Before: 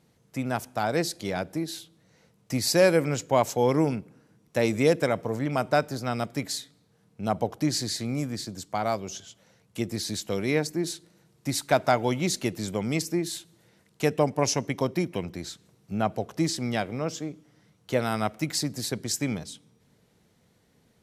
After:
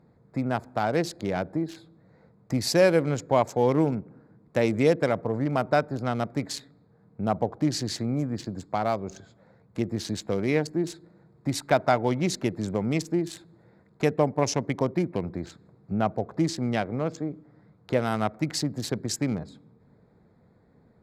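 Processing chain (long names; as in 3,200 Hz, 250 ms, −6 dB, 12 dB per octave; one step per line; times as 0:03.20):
adaptive Wiener filter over 15 samples
high-shelf EQ 6,500 Hz −9 dB
in parallel at +1 dB: downward compressor, threshold −34 dBFS, peak gain reduction 17.5 dB
on the sum: level −1 dB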